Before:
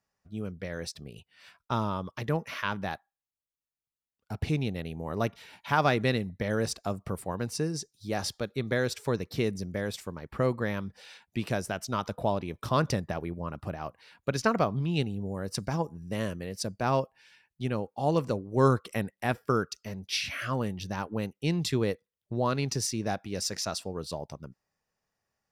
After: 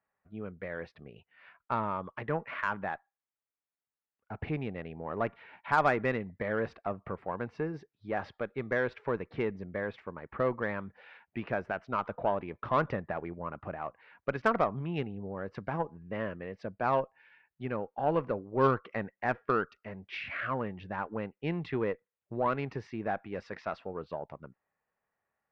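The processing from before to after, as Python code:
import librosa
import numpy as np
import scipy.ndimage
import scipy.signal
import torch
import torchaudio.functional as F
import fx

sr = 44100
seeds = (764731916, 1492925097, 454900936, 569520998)

y = scipy.signal.sosfilt(scipy.signal.butter(4, 2200.0, 'lowpass', fs=sr, output='sos'), x)
y = fx.low_shelf(y, sr, hz=300.0, db=-11.0)
y = fx.cheby_harmonics(y, sr, harmonics=(5, 8), levels_db=(-26, -29), full_scale_db=-11.5)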